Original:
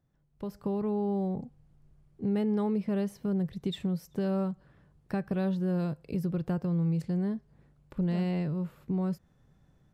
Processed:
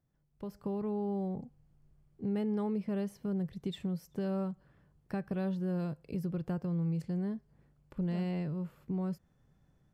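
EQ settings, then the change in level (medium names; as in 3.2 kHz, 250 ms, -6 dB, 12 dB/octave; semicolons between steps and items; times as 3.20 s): band-stop 3.8 kHz, Q 16; -4.5 dB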